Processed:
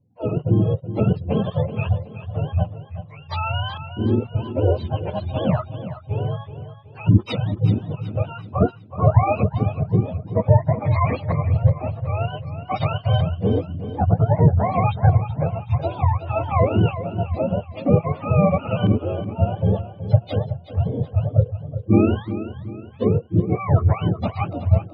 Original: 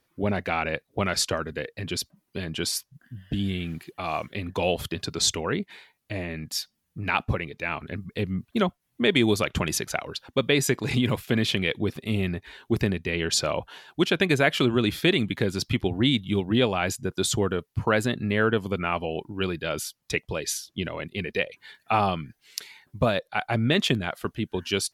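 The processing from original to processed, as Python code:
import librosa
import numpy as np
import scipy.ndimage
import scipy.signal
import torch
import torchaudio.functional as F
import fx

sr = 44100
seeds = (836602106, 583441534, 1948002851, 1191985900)

p1 = fx.octave_mirror(x, sr, pivot_hz=510.0)
p2 = fx.spec_gate(p1, sr, threshold_db=-30, keep='strong')
p3 = fx.high_shelf_res(p2, sr, hz=2600.0, db=14.0, q=3.0)
p4 = fx.notch(p3, sr, hz=390.0, q=12.0)
p5 = fx.rider(p4, sr, range_db=10, speed_s=0.5)
p6 = p4 + F.gain(torch.from_numpy(p5), -1.0).numpy()
p7 = fx.filter_lfo_lowpass(p6, sr, shape='saw_up', hz=0.53, low_hz=430.0, high_hz=1500.0, q=0.85)
p8 = fx.echo_feedback(p7, sr, ms=374, feedback_pct=41, wet_db=-12.0)
p9 = fx.end_taper(p8, sr, db_per_s=510.0)
y = F.gain(torch.from_numpy(p9), 2.0).numpy()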